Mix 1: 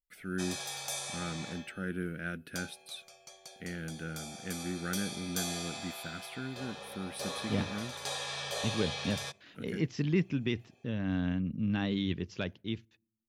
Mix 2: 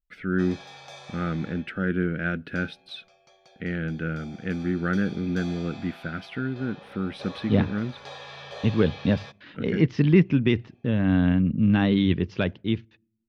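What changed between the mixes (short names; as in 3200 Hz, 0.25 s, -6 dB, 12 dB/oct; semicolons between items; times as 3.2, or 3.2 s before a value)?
speech +11.5 dB; master: add air absorption 230 m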